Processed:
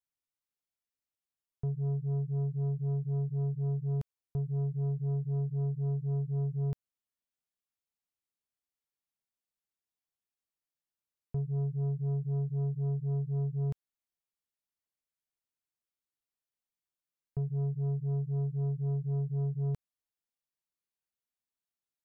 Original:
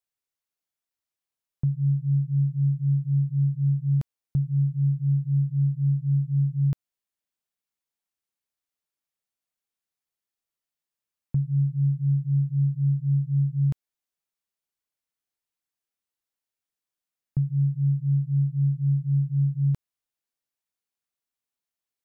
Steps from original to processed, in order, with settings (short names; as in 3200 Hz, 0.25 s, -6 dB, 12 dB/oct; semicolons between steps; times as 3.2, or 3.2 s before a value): low shelf 290 Hz +5 dB; soft clip -21 dBFS, distortion -12 dB; gain -7.5 dB